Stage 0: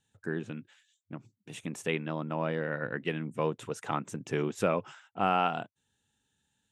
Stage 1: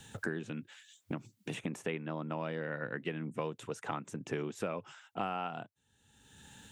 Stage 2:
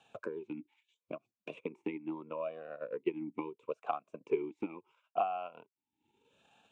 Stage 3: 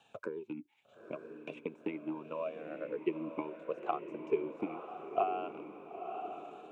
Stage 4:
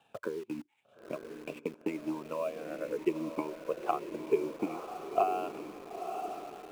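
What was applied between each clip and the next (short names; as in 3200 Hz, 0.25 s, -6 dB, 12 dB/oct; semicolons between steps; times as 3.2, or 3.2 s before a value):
three-band squash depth 100%; gain -6 dB
transient shaper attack +7 dB, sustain -9 dB; vowel sweep a-u 0.76 Hz; gain +6 dB
diffused feedback echo 0.952 s, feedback 50%, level -7.5 dB; wow and flutter 28 cents
median filter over 9 samples; in parallel at -6 dB: requantised 8-bit, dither none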